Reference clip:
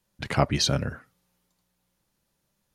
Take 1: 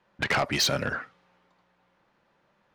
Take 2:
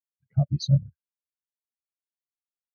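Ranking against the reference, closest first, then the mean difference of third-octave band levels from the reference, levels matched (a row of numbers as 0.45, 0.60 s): 1, 2; 6.0, 20.5 dB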